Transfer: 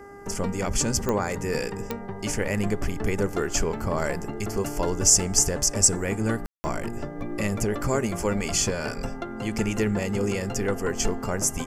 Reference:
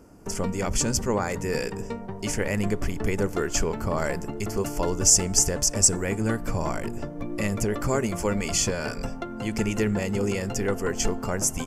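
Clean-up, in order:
click removal
hum removal 401.5 Hz, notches 5
ambience match 0:06.46–0:06.64

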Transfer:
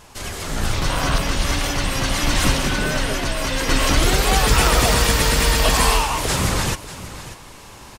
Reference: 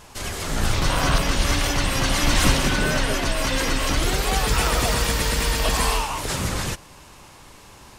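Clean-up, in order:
echo removal 590 ms −14.5 dB
level 0 dB, from 0:03.69 −5 dB

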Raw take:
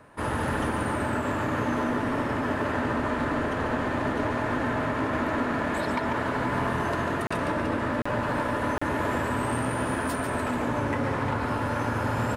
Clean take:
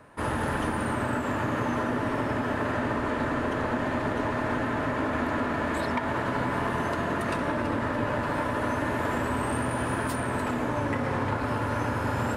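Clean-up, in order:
clipped peaks rebuilt −18.5 dBFS
repair the gap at 0:07.27/0:08.02/0:08.78, 35 ms
echo removal 144 ms −6.5 dB

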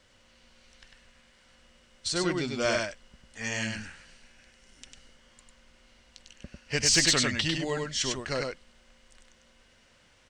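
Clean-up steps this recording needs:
clipped peaks rebuilt −13.5 dBFS
echo removal 99 ms −3.5 dB

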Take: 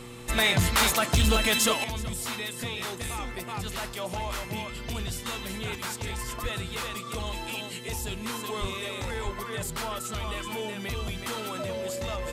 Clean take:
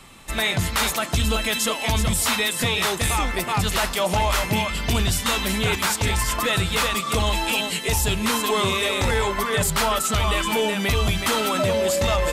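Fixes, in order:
clipped peaks rebuilt −17 dBFS
hum removal 120.9 Hz, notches 4
high-pass at the plosives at 0:06.42/0:08.60/0:09.24
level 0 dB, from 0:01.84 +12 dB

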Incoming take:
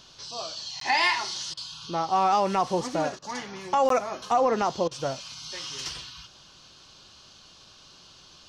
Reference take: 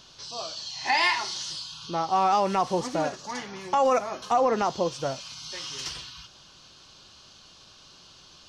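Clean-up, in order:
repair the gap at 0:00.80/0:03.89, 13 ms
repair the gap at 0:01.54/0:03.19/0:04.88, 31 ms

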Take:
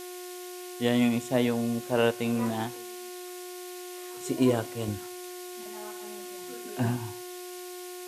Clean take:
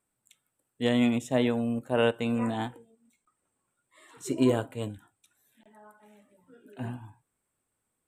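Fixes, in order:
hum removal 360.2 Hz, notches 23
noise reduction from a noise print 30 dB
level 0 dB, from 0:04.88 −8 dB

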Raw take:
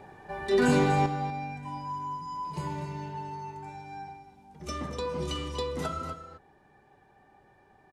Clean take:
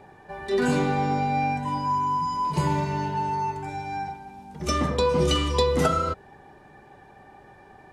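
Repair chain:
echo removal 242 ms −10.5 dB
level correction +11 dB, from 0:01.06

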